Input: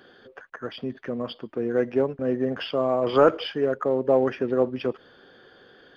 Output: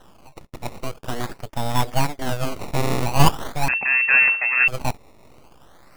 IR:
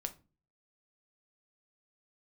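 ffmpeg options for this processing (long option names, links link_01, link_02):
-filter_complex "[0:a]asplit=3[link_01][link_02][link_03];[link_01]afade=type=out:start_time=2.17:duration=0.02[link_04];[link_02]adynamicequalizer=threshold=0.0178:dfrequency=620:dqfactor=0.83:tfrequency=620:tqfactor=0.83:attack=5:release=100:ratio=0.375:range=3:mode=cutabove:tftype=bell,afade=type=in:start_time=2.17:duration=0.02,afade=type=out:start_time=3.05:duration=0.02[link_05];[link_03]afade=type=in:start_time=3.05:duration=0.02[link_06];[link_04][link_05][link_06]amix=inputs=3:normalize=0,acrusher=samples=19:mix=1:aa=0.000001:lfo=1:lforange=19:lforate=0.44,aeval=exprs='abs(val(0))':channel_layout=same,asettb=1/sr,asplit=3[link_07][link_08][link_09];[link_07]atrim=end=3.684[link_10];[link_08]atrim=start=3.68:end=4.68,asetpts=PTS-STARTPTS,afade=type=in:duration=0.004:curve=qsin,afade=type=out:start_time=0.996:duration=0.004:curve=qsin,lowpass=frequency=2300:width_type=q:width=0.5098,lowpass=frequency=2300:width_type=q:width=0.6013,lowpass=frequency=2300:width_type=q:width=0.9,lowpass=frequency=2300:width_type=q:width=2.563,afreqshift=-2700[link_11];[link_09]atrim=start=4.676[link_12];[link_10][link_11]acrossfade=duration=0.004:curve1=hsin:curve2=qsin[link_13];[link_13][link_12]acrossfade=duration=0.004:curve1=qsin:curve2=hsin,volume=5dB"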